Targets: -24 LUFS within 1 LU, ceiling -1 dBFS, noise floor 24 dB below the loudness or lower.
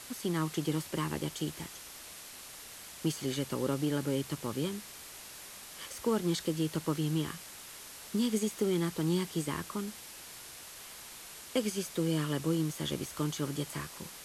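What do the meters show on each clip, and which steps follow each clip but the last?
noise floor -49 dBFS; noise floor target -58 dBFS; loudness -34.0 LUFS; peak level -18.0 dBFS; loudness target -24.0 LUFS
-> noise reduction 9 dB, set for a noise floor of -49 dBFS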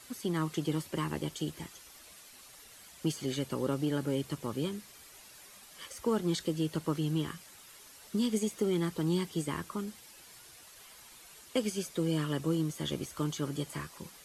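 noise floor -54 dBFS; noise floor target -58 dBFS
-> noise reduction 6 dB, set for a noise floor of -54 dBFS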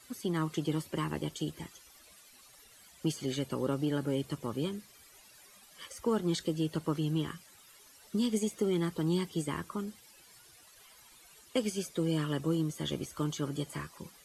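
noise floor -58 dBFS; loudness -34.0 LUFS; peak level -18.5 dBFS; loudness target -24.0 LUFS
-> trim +10 dB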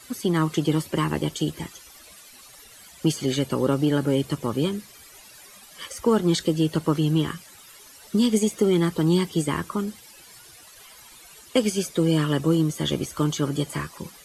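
loudness -24.0 LUFS; peak level -8.5 dBFS; noise floor -48 dBFS

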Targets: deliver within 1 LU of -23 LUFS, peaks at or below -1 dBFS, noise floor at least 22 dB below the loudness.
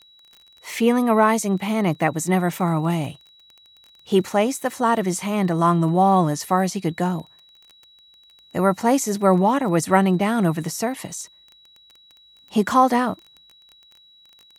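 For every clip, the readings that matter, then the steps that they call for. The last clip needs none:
tick rate 22 per s; steady tone 3.9 kHz; tone level -50 dBFS; loudness -20.5 LUFS; peak level -3.0 dBFS; loudness target -23.0 LUFS
-> de-click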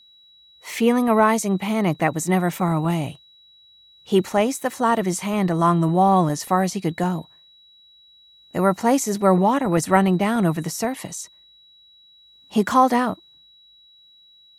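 tick rate 0 per s; steady tone 3.9 kHz; tone level -50 dBFS
-> band-stop 3.9 kHz, Q 30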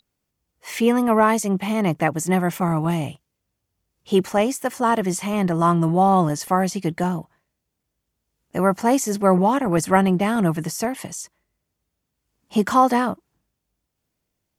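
steady tone not found; loudness -20.5 LUFS; peak level -3.0 dBFS; loudness target -23.0 LUFS
-> trim -2.5 dB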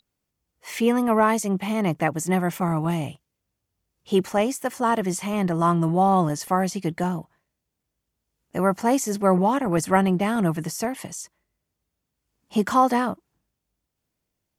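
loudness -23.0 LUFS; peak level -5.5 dBFS; noise floor -81 dBFS

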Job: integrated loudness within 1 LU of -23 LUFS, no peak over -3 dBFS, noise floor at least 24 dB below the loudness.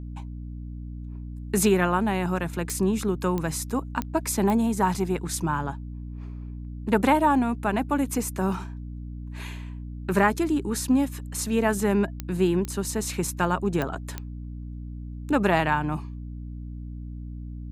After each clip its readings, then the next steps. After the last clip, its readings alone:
clicks found 8; hum 60 Hz; highest harmonic 300 Hz; hum level -34 dBFS; loudness -25.5 LUFS; peak level -6.5 dBFS; loudness target -23.0 LUFS
-> de-click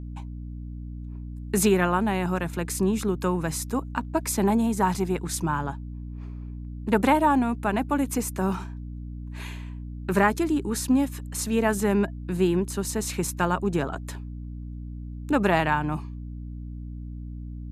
clicks found 0; hum 60 Hz; highest harmonic 300 Hz; hum level -34 dBFS
-> de-hum 60 Hz, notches 5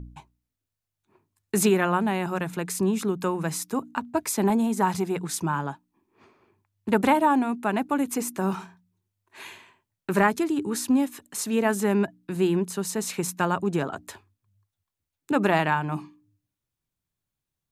hum not found; loudness -25.5 LUFS; peak level -6.5 dBFS; loudness target -23.0 LUFS
-> trim +2.5 dB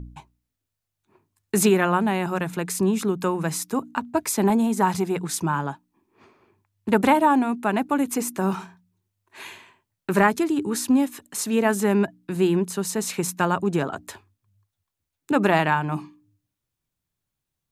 loudness -23.0 LUFS; peak level -4.0 dBFS; noise floor -83 dBFS

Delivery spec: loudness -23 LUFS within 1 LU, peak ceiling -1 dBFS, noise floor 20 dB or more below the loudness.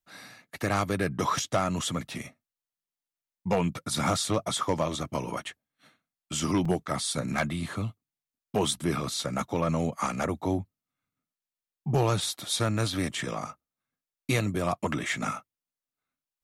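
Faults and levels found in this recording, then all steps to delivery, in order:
clipped samples 0.2%; clipping level -17.5 dBFS; dropouts 1; longest dropout 4.4 ms; loudness -29.5 LUFS; peak level -17.5 dBFS; loudness target -23.0 LUFS
-> clip repair -17.5 dBFS; interpolate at 6.65 s, 4.4 ms; trim +6.5 dB

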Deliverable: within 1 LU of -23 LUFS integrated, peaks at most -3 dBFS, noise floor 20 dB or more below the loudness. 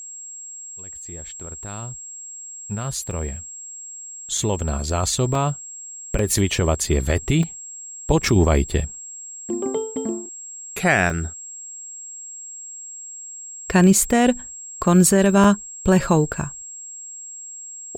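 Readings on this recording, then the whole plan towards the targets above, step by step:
dropouts 7; longest dropout 2.8 ms; steady tone 7.6 kHz; tone level -34 dBFS; loudness -20.5 LUFS; peak level -5.0 dBFS; loudness target -23.0 LUFS
-> interpolate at 3.11/4.38/5.35/6.19/7.43/11.10/15.44 s, 2.8 ms; band-stop 7.6 kHz, Q 30; trim -2.5 dB

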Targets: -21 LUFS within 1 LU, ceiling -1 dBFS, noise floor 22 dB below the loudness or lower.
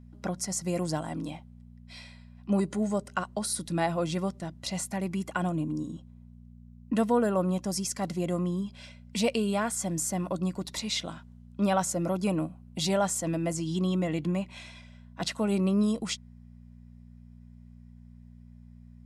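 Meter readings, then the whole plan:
hum 60 Hz; highest harmonic 240 Hz; hum level -48 dBFS; loudness -30.0 LUFS; peak level -13.0 dBFS; loudness target -21.0 LUFS
-> de-hum 60 Hz, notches 4; trim +9 dB

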